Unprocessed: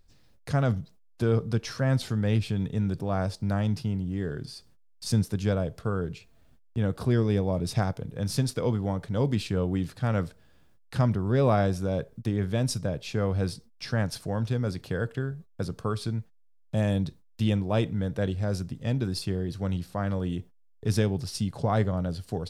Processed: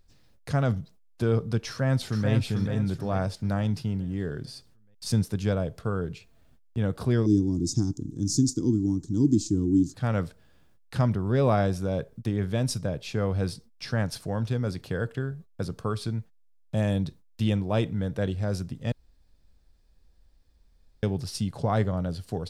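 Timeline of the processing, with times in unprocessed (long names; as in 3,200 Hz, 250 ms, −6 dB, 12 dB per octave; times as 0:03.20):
0:01.68–0:02.30: delay throw 440 ms, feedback 45%, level −5 dB
0:07.26–0:09.94: drawn EQ curve 190 Hz 0 dB, 320 Hz +15 dB, 550 Hz −29 dB, 950 Hz −16 dB, 2,300 Hz −28 dB, 6,900 Hz +15 dB, 10,000 Hz −7 dB
0:18.92–0:21.03: fill with room tone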